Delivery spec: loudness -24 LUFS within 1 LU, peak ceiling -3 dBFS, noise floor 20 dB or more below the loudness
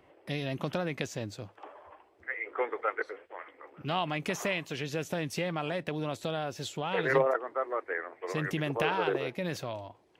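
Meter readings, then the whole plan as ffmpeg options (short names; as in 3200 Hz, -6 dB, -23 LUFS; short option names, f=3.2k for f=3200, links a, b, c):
loudness -33.0 LUFS; peak -13.0 dBFS; loudness target -24.0 LUFS
-> -af "volume=9dB"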